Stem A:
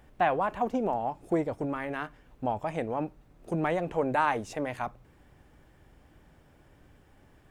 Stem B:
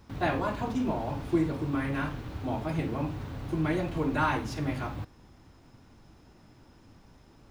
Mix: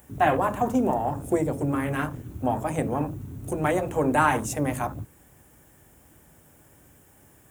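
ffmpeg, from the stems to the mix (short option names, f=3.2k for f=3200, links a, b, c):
-filter_complex "[0:a]volume=2.5dB[a];[1:a]afwtdn=0.0178,volume=2dB[b];[a][b]amix=inputs=2:normalize=0,highpass=64,aexciter=amount=3.2:drive=9.6:freq=6.5k"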